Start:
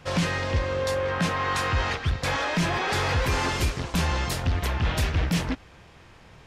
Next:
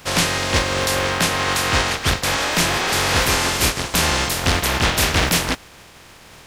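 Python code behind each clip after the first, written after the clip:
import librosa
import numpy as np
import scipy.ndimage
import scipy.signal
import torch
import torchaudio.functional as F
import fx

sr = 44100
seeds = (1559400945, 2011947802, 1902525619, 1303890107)

y = fx.spec_flatten(x, sr, power=0.5)
y = y * 10.0 ** (6.0 / 20.0)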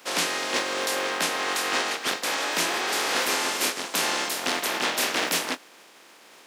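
y = scipy.signal.sosfilt(scipy.signal.butter(4, 250.0, 'highpass', fs=sr, output='sos'), x)
y = fx.doubler(y, sr, ms=24.0, db=-14.0)
y = y * 10.0 ** (-6.5 / 20.0)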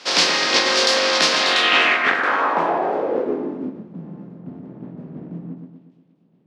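y = fx.echo_split(x, sr, split_hz=2800.0, low_ms=121, high_ms=589, feedback_pct=52, wet_db=-5.0)
y = fx.filter_sweep_lowpass(y, sr, from_hz=4900.0, to_hz=160.0, start_s=1.37, end_s=3.98, q=2.6)
y = y * 10.0 ** (5.5 / 20.0)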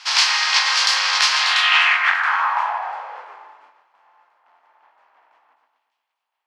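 y = scipy.signal.sosfilt(scipy.signal.cheby1(4, 1.0, 870.0, 'highpass', fs=sr, output='sos'), x)
y = fx.notch(y, sr, hz=3700.0, q=22.0)
y = y * 10.0 ** (1.5 / 20.0)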